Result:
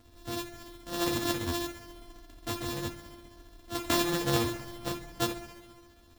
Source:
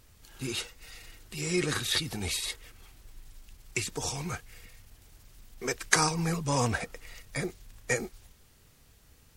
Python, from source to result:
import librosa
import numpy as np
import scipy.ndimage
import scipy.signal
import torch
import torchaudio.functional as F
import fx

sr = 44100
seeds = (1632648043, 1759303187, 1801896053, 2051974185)

y = np.r_[np.sort(x[:len(x) // 128 * 128].reshape(-1, 128), axis=1).ravel(), x[len(x) // 128 * 128:]]
y = fx.rev_double_slope(y, sr, seeds[0], early_s=0.22, late_s=2.5, knee_db=-18, drr_db=0.5)
y = fx.stretch_grains(y, sr, factor=0.66, grain_ms=136.0)